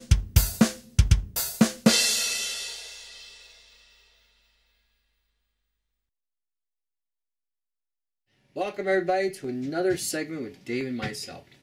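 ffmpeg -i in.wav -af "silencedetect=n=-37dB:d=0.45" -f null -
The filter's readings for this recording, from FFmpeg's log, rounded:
silence_start: 3.28
silence_end: 8.56 | silence_duration: 5.28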